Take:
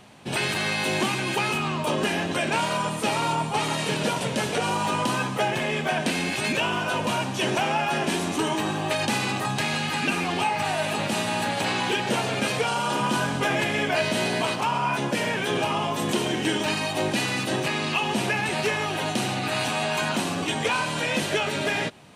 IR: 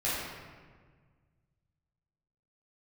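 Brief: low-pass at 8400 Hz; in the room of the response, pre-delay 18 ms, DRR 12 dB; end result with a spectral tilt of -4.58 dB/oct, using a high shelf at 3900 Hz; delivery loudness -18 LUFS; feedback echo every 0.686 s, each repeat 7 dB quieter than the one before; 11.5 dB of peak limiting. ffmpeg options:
-filter_complex "[0:a]lowpass=8.4k,highshelf=f=3.9k:g=-5,alimiter=limit=-24dB:level=0:latency=1,aecho=1:1:686|1372|2058|2744|3430:0.447|0.201|0.0905|0.0407|0.0183,asplit=2[a][b];[1:a]atrim=start_sample=2205,adelay=18[c];[b][c]afir=irnorm=-1:irlink=0,volume=-21dB[d];[a][d]amix=inputs=2:normalize=0,volume=13dB"

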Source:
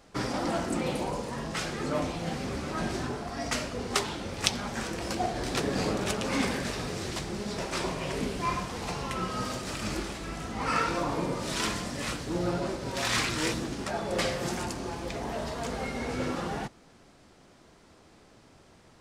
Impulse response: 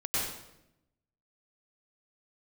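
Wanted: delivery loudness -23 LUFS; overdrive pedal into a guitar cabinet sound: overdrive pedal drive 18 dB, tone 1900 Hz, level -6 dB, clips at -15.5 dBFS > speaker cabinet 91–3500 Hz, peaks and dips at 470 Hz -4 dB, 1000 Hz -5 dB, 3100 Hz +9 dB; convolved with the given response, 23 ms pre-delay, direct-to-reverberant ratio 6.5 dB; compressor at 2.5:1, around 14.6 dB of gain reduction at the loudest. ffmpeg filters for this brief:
-filter_complex "[0:a]acompressor=threshold=-43dB:ratio=2.5,asplit=2[a][b];[1:a]atrim=start_sample=2205,adelay=23[c];[b][c]afir=irnorm=-1:irlink=0,volume=-14dB[d];[a][d]amix=inputs=2:normalize=0,asplit=2[e][f];[f]highpass=f=720:p=1,volume=18dB,asoftclip=type=tanh:threshold=-15.5dB[g];[e][g]amix=inputs=2:normalize=0,lowpass=f=1.9k:p=1,volume=-6dB,highpass=91,equalizer=f=470:t=q:w=4:g=-4,equalizer=f=1k:t=q:w=4:g=-5,equalizer=f=3.1k:t=q:w=4:g=9,lowpass=f=3.5k:w=0.5412,lowpass=f=3.5k:w=1.3066,volume=11.5dB"

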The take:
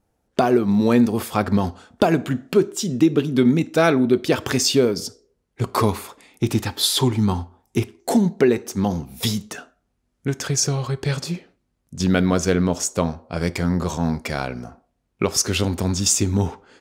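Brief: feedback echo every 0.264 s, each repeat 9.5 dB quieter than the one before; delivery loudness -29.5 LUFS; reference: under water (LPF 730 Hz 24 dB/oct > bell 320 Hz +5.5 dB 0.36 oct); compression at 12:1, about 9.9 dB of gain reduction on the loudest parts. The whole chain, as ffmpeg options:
-af "acompressor=threshold=-21dB:ratio=12,lowpass=f=730:w=0.5412,lowpass=f=730:w=1.3066,equalizer=f=320:t=o:w=0.36:g=5.5,aecho=1:1:264|528|792|1056:0.335|0.111|0.0365|0.012,volume=-2.5dB"

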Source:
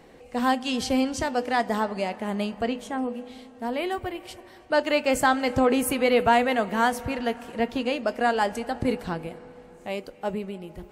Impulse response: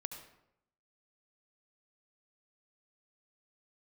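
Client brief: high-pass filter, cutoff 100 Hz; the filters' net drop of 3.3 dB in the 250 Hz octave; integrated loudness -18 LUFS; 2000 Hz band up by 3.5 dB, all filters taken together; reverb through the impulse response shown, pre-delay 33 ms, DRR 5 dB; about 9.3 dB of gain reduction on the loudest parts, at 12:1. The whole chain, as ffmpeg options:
-filter_complex "[0:a]highpass=100,equalizer=f=250:t=o:g=-3.5,equalizer=f=2k:t=o:g=4.5,acompressor=threshold=-24dB:ratio=12,asplit=2[a][b];[1:a]atrim=start_sample=2205,adelay=33[c];[b][c]afir=irnorm=-1:irlink=0,volume=-3dB[d];[a][d]amix=inputs=2:normalize=0,volume=11.5dB"

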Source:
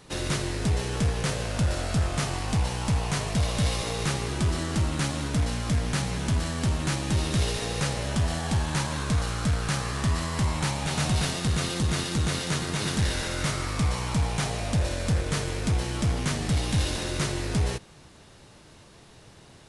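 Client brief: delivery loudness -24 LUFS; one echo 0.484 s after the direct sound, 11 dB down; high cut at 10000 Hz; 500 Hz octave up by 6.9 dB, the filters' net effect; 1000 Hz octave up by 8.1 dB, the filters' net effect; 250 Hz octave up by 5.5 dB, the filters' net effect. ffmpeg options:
-af "lowpass=10k,equalizer=f=250:t=o:g=6.5,equalizer=f=500:t=o:g=4.5,equalizer=f=1k:t=o:g=8.5,aecho=1:1:484:0.282"

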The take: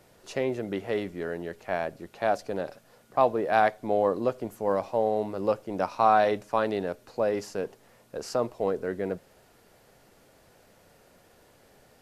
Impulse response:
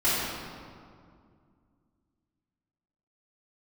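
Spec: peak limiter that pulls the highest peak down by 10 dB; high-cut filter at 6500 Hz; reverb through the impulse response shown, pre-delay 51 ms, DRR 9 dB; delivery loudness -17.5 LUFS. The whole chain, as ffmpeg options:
-filter_complex "[0:a]lowpass=6.5k,alimiter=limit=-18dB:level=0:latency=1,asplit=2[a][b];[1:a]atrim=start_sample=2205,adelay=51[c];[b][c]afir=irnorm=-1:irlink=0,volume=-23.5dB[d];[a][d]amix=inputs=2:normalize=0,volume=13.5dB"

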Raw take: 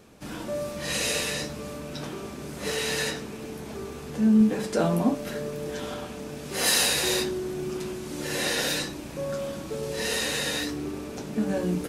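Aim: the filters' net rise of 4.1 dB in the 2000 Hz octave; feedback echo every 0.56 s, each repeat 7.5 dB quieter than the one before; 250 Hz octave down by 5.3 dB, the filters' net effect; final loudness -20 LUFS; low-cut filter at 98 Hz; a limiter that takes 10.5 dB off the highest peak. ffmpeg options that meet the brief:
-af "highpass=98,equalizer=f=250:t=o:g=-6.5,equalizer=f=2k:t=o:g=5,alimiter=limit=-18.5dB:level=0:latency=1,aecho=1:1:560|1120|1680|2240|2800:0.422|0.177|0.0744|0.0312|0.0131,volume=9dB"

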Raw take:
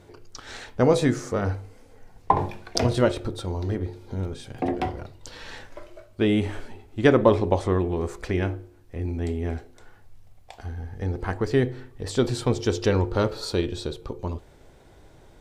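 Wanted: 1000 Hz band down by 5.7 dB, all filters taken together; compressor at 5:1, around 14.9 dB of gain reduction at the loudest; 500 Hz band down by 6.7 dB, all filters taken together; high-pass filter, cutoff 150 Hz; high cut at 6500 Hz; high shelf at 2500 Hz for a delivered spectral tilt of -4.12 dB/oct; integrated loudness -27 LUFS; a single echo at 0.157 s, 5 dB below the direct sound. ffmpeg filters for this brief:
-af "highpass=150,lowpass=6.5k,equalizer=f=500:t=o:g=-7.5,equalizer=f=1k:t=o:g=-6,highshelf=f=2.5k:g=8.5,acompressor=threshold=-34dB:ratio=5,aecho=1:1:157:0.562,volume=11dB"

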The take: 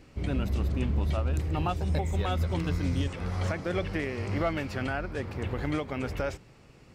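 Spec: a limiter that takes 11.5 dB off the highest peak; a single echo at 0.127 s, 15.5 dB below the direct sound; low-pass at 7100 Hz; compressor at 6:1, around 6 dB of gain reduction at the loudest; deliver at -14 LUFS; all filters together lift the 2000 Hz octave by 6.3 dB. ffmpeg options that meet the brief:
-af "lowpass=7.1k,equalizer=f=2k:t=o:g=8,acompressor=threshold=-30dB:ratio=6,alimiter=level_in=6.5dB:limit=-24dB:level=0:latency=1,volume=-6.5dB,aecho=1:1:127:0.168,volume=25.5dB"

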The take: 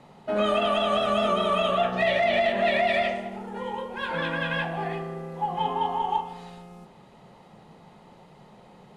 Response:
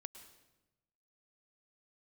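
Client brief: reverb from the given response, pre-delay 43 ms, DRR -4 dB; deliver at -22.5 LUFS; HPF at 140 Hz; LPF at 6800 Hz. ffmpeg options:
-filter_complex "[0:a]highpass=140,lowpass=6.8k,asplit=2[a][b];[1:a]atrim=start_sample=2205,adelay=43[c];[b][c]afir=irnorm=-1:irlink=0,volume=9dB[d];[a][d]amix=inputs=2:normalize=0,volume=-2dB"

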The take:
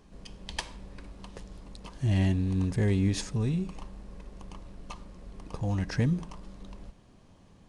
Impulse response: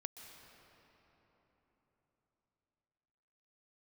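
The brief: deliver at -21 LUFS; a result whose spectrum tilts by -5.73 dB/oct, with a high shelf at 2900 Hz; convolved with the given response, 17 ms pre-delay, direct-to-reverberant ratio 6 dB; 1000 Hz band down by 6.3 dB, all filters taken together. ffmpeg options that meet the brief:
-filter_complex "[0:a]equalizer=f=1k:t=o:g=-9,highshelf=f=2.9k:g=6,asplit=2[a][b];[1:a]atrim=start_sample=2205,adelay=17[c];[b][c]afir=irnorm=-1:irlink=0,volume=-2.5dB[d];[a][d]amix=inputs=2:normalize=0,volume=8.5dB"

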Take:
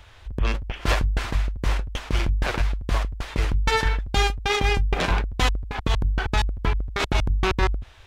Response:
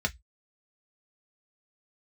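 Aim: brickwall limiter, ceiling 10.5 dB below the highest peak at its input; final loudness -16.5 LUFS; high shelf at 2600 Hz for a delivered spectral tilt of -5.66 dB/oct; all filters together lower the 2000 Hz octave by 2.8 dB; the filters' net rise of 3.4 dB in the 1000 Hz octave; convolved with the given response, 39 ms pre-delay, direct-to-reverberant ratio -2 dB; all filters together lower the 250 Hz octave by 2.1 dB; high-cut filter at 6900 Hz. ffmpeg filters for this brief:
-filter_complex "[0:a]lowpass=6.9k,equalizer=f=250:t=o:g=-3.5,equalizer=f=1k:t=o:g=5.5,equalizer=f=2k:t=o:g=-7.5,highshelf=f=2.6k:g=5,alimiter=limit=-15dB:level=0:latency=1,asplit=2[a][b];[1:a]atrim=start_sample=2205,adelay=39[c];[b][c]afir=irnorm=-1:irlink=0,volume=-5.5dB[d];[a][d]amix=inputs=2:normalize=0,volume=3.5dB"

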